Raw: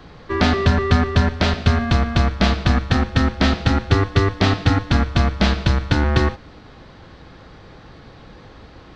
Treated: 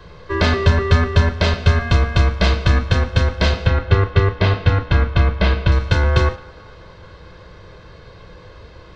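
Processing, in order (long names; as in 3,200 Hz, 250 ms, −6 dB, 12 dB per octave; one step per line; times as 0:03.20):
0:03.66–0:05.72: low-pass filter 3,300 Hz 12 dB per octave
feedback echo with a band-pass in the loop 219 ms, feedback 72%, band-pass 1,000 Hz, level −21.5 dB
convolution reverb, pre-delay 12 ms, DRR 10 dB
level −2 dB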